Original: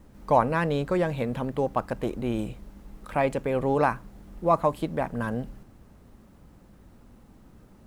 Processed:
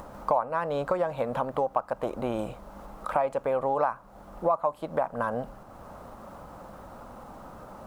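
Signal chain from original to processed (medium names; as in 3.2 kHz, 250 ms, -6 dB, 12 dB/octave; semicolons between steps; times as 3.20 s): high-order bell 860 Hz +12.5 dB; upward compressor, threshold -34 dBFS; bass shelf 170 Hz -6 dB; compression 4:1, threshold -25 dBFS, peak gain reduction 18.5 dB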